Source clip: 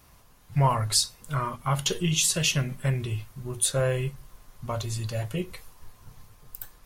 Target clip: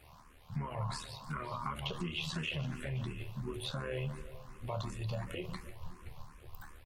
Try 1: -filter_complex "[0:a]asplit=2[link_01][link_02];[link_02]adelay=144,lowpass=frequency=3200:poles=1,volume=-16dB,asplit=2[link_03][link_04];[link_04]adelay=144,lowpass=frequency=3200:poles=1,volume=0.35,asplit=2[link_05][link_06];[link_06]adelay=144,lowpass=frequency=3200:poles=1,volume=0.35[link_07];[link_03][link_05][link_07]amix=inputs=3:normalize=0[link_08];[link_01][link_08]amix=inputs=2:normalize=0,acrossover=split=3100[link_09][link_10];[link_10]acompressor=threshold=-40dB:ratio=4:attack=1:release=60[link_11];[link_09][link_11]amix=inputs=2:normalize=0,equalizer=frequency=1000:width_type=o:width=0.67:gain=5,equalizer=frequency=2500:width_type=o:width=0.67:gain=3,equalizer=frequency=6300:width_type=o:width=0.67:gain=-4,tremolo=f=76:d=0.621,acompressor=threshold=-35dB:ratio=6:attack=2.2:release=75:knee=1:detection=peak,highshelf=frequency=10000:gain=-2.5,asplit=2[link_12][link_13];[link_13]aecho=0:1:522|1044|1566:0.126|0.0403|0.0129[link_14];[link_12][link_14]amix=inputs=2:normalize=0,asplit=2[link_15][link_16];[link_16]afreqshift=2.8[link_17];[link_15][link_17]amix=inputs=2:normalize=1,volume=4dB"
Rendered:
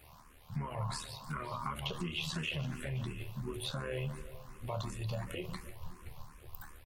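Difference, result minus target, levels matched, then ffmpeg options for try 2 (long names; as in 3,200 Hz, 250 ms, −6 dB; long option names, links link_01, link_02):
8,000 Hz band +3.0 dB
-filter_complex "[0:a]asplit=2[link_01][link_02];[link_02]adelay=144,lowpass=frequency=3200:poles=1,volume=-16dB,asplit=2[link_03][link_04];[link_04]adelay=144,lowpass=frequency=3200:poles=1,volume=0.35,asplit=2[link_05][link_06];[link_06]adelay=144,lowpass=frequency=3200:poles=1,volume=0.35[link_07];[link_03][link_05][link_07]amix=inputs=3:normalize=0[link_08];[link_01][link_08]amix=inputs=2:normalize=0,acrossover=split=3100[link_09][link_10];[link_10]acompressor=threshold=-40dB:ratio=4:attack=1:release=60[link_11];[link_09][link_11]amix=inputs=2:normalize=0,equalizer=frequency=1000:width_type=o:width=0.67:gain=5,equalizer=frequency=2500:width_type=o:width=0.67:gain=3,equalizer=frequency=6300:width_type=o:width=0.67:gain=-4,tremolo=f=76:d=0.621,acompressor=threshold=-35dB:ratio=6:attack=2.2:release=75:knee=1:detection=peak,highshelf=frequency=10000:gain=-12,asplit=2[link_12][link_13];[link_13]aecho=0:1:522|1044|1566:0.126|0.0403|0.0129[link_14];[link_12][link_14]amix=inputs=2:normalize=0,asplit=2[link_15][link_16];[link_16]afreqshift=2.8[link_17];[link_15][link_17]amix=inputs=2:normalize=1,volume=4dB"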